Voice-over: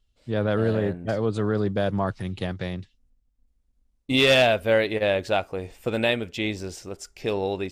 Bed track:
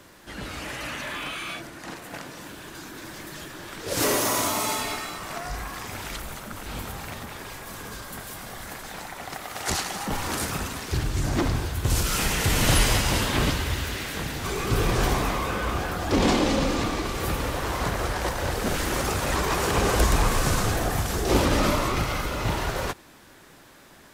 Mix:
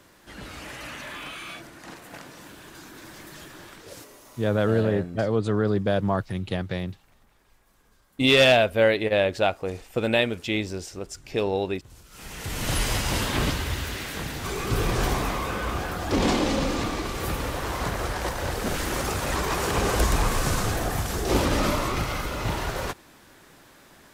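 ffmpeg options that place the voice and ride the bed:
ffmpeg -i stem1.wav -i stem2.wav -filter_complex "[0:a]adelay=4100,volume=1dB[link_01];[1:a]volume=20.5dB,afade=type=out:start_time=3.61:duration=0.44:silence=0.0794328,afade=type=in:start_time=12.1:duration=1.13:silence=0.0562341[link_02];[link_01][link_02]amix=inputs=2:normalize=0" out.wav

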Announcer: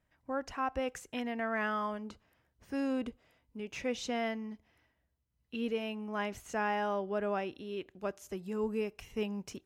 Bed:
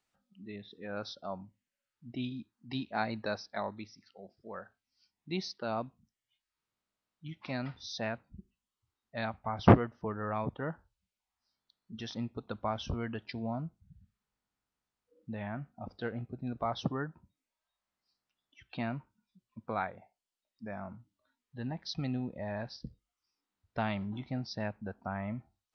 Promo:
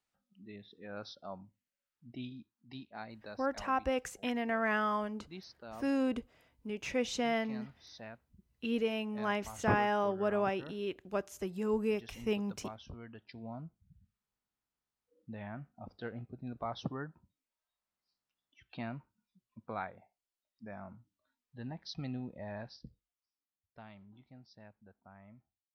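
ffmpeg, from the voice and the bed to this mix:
ffmpeg -i stem1.wav -i stem2.wav -filter_complex "[0:a]adelay=3100,volume=2dB[link_01];[1:a]volume=2.5dB,afade=type=out:start_time=2.01:duration=0.94:silence=0.421697,afade=type=in:start_time=13.13:duration=0.83:silence=0.421697,afade=type=out:start_time=22.56:duration=1.03:silence=0.188365[link_02];[link_01][link_02]amix=inputs=2:normalize=0" out.wav

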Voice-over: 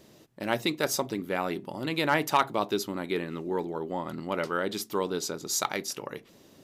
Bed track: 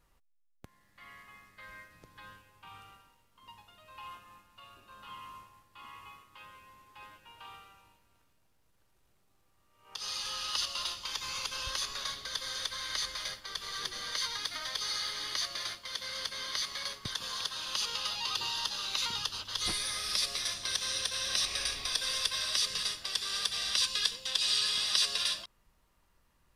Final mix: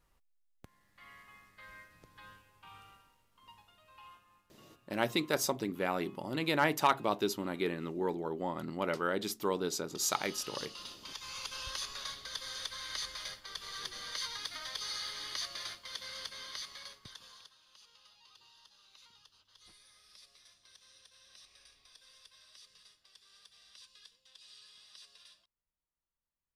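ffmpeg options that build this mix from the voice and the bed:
ffmpeg -i stem1.wav -i stem2.wav -filter_complex "[0:a]adelay=4500,volume=-3.5dB[link_01];[1:a]volume=3.5dB,afade=type=out:start_time=3.32:duration=0.95:silence=0.398107,afade=type=in:start_time=10.94:duration=0.58:silence=0.473151,afade=type=out:start_time=15.96:duration=1.62:silence=0.0707946[link_02];[link_01][link_02]amix=inputs=2:normalize=0" out.wav

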